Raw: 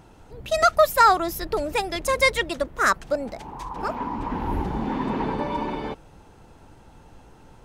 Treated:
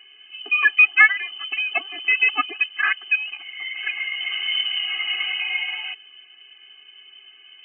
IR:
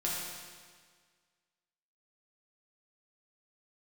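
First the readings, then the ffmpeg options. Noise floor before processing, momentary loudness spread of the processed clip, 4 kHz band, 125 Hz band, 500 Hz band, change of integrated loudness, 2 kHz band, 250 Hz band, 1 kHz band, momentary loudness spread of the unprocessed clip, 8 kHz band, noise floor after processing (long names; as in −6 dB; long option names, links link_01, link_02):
−51 dBFS, 16 LU, +10.0 dB, below −40 dB, −22.5 dB, +3.5 dB, +10.0 dB, −20.0 dB, −10.5 dB, 16 LU, below −40 dB, −49 dBFS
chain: -af "lowpass=frequency=2600:width_type=q:width=0.5098,lowpass=frequency=2600:width_type=q:width=0.6013,lowpass=frequency=2600:width_type=q:width=0.9,lowpass=frequency=2600:width_type=q:width=2.563,afreqshift=-3100,afftfilt=real='re*eq(mod(floor(b*sr/1024/220),2),1)':imag='im*eq(mod(floor(b*sr/1024/220),2),1)':win_size=1024:overlap=0.75,volume=4dB"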